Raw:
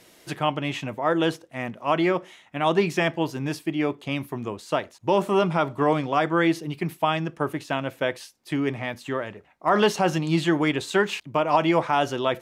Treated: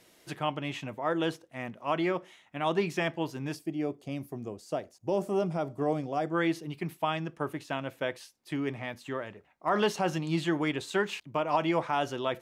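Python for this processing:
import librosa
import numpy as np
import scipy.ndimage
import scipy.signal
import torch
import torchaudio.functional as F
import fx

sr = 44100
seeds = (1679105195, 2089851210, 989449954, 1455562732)

y = fx.spec_box(x, sr, start_s=3.56, length_s=2.78, low_hz=810.0, high_hz=4400.0, gain_db=-9)
y = F.gain(torch.from_numpy(y), -7.0).numpy()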